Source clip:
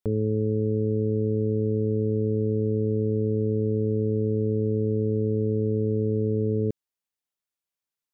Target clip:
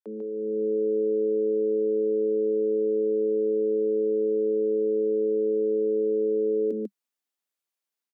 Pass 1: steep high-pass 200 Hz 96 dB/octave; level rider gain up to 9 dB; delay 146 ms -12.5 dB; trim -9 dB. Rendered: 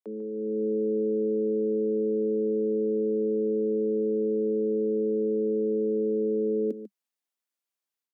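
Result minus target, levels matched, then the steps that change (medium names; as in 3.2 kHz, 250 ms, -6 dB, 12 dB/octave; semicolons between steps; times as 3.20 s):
echo-to-direct -9.5 dB
change: delay 146 ms -3 dB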